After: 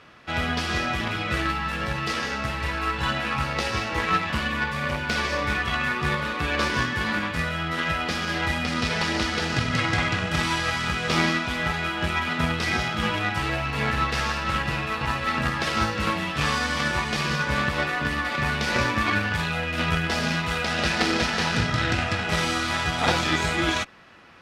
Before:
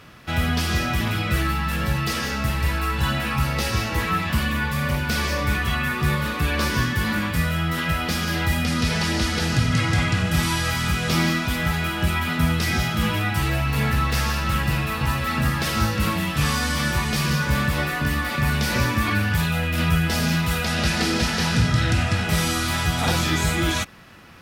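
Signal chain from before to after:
stylus tracing distortion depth 0.029 ms
bass and treble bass −9 dB, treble −2 dB
harmonic generator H 7 −22 dB, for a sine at −6.5 dBFS
high-frequency loss of the air 64 metres
level +5.5 dB

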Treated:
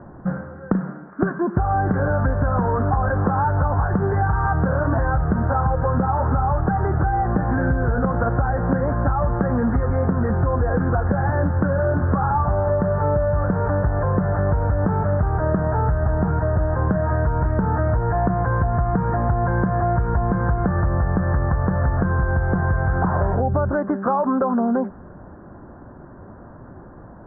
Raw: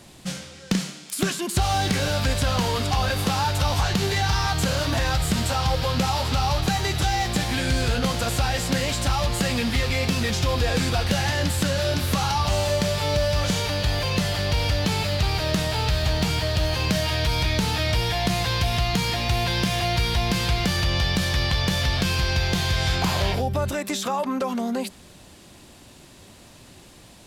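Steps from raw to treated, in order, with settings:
Butterworth low-pass 1,600 Hz 72 dB per octave
downward compressor 10 to 1, threshold −24 dBFS, peak gain reduction 8 dB
level +8.5 dB

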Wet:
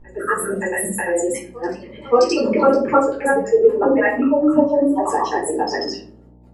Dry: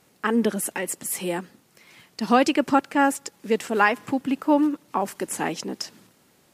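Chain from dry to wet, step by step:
spectral envelope exaggerated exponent 3
granular cloud 100 ms, grains 20 per second, spray 316 ms, pitch spread up and down by 0 semitones
backwards echo 574 ms −22 dB
hum with harmonics 60 Hz, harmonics 17, −50 dBFS −8 dB per octave
convolution reverb RT60 0.40 s, pre-delay 7 ms, DRR −4.5 dB

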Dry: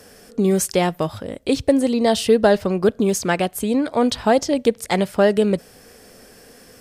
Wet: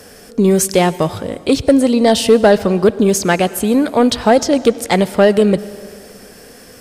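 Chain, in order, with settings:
soft clipping −7 dBFS, distortion −21 dB
on a send: convolution reverb RT60 2.0 s, pre-delay 83 ms, DRR 17 dB
on the sum: level +6.5 dB

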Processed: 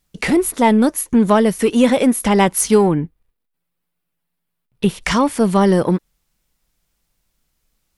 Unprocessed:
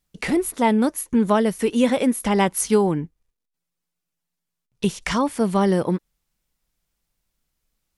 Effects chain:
0:02.88–0:05.04: parametric band 6,400 Hz −12.5 dB 0.97 octaves
in parallel at −6.5 dB: soft clipping −21 dBFS, distortion −9 dB
on the sum: level +3.5 dB

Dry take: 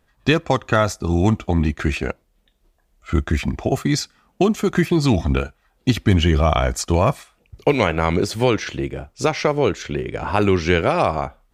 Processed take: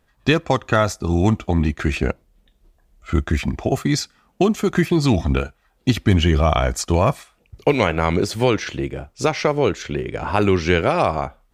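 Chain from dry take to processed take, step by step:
0:01.94–0:03.11: low-shelf EQ 340 Hz +6.5 dB

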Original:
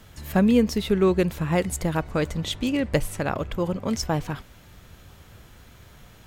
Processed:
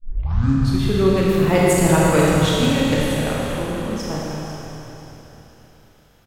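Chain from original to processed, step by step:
turntable start at the beginning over 0.90 s
source passing by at 0:01.95, 7 m/s, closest 3.5 metres
on a send: echo with shifted repeats 494 ms, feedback 36%, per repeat −39 Hz, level −12.5 dB
on the sum: four-comb reverb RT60 3.2 s, combs from 26 ms, DRR −5.5 dB
level +5 dB

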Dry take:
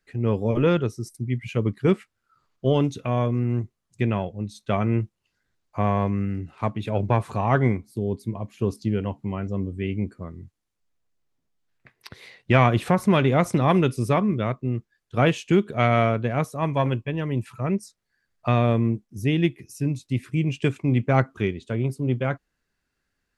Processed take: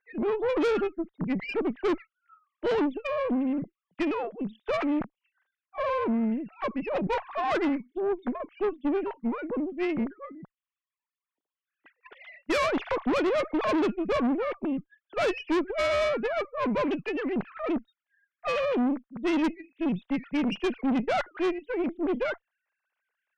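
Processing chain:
three sine waves on the formant tracks
tube saturation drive 24 dB, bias 0.5
level +1.5 dB

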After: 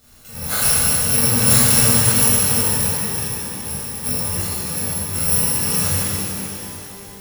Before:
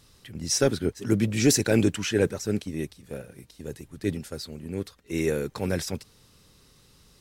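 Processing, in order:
samples in bit-reversed order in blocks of 128 samples
tape wow and flutter 19 cents
in parallel at −1 dB: downward compressor, threshold −32 dBFS, peak gain reduction 15.5 dB
on the sum: reverb with rising layers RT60 3.2 s, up +12 semitones, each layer −8 dB, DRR −11 dB
level −4 dB

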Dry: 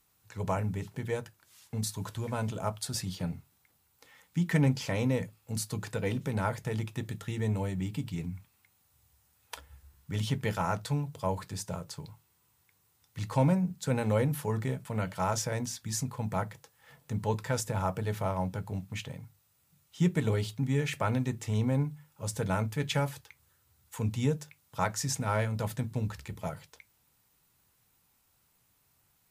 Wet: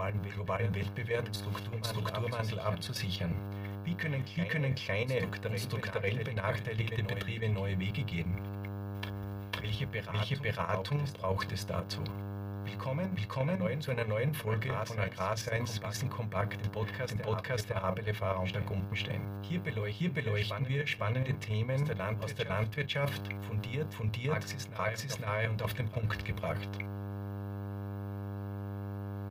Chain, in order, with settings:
parametric band 2,700 Hz +10 dB 2 octaves
comb filter 1.8 ms, depth 65%
backwards echo 503 ms −8 dB
output level in coarse steps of 9 dB
hum with harmonics 100 Hz, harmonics 17, −47 dBFS −7 dB per octave
reversed playback
downward compressor 4 to 1, threshold −39 dBFS, peak gain reduction 14 dB
reversed playback
parametric band 7,800 Hz −15 dB 0.96 octaves
level +8 dB

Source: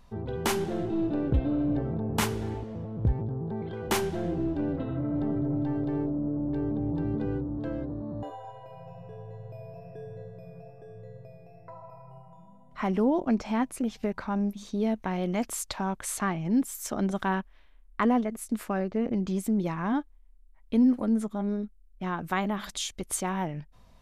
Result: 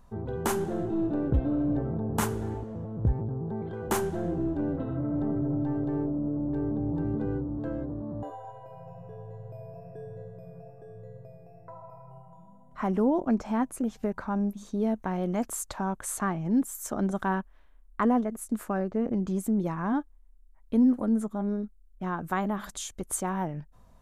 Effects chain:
flat-topped bell 3,300 Hz −8 dB

